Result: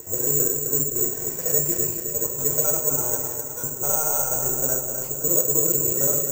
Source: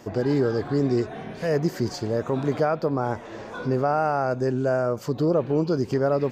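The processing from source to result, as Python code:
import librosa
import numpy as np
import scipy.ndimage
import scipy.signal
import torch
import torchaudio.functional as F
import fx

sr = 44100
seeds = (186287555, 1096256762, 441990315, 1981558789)

p1 = fx.local_reverse(x, sr, ms=66.0)
p2 = scipy.signal.sosfilt(scipy.signal.butter(2, 48.0, 'highpass', fs=sr, output='sos'), p1)
p3 = fx.high_shelf(p2, sr, hz=5800.0, db=-8.5)
p4 = p3 + 0.41 * np.pad(p3, (int(2.1 * sr / 1000.0), 0))[:len(p3)]
p5 = 10.0 ** (-28.0 / 20.0) * np.tanh(p4 / 10.0 ** (-28.0 / 20.0))
p6 = p4 + (p5 * 10.0 ** (-4.0 / 20.0))
p7 = fx.step_gate(p6, sr, bpm=126, pattern='xxxx..x.xxxx', floor_db=-12.0, edge_ms=4.5)
p8 = p7 + fx.echo_feedback(p7, sr, ms=259, feedback_pct=54, wet_db=-6.5, dry=0)
p9 = fx.room_shoebox(p8, sr, seeds[0], volume_m3=61.0, walls='mixed', distance_m=0.48)
p10 = (np.kron(p9[::6], np.eye(6)[0]) * 6)[:len(p9)]
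y = p10 * 10.0 ** (-11.5 / 20.0)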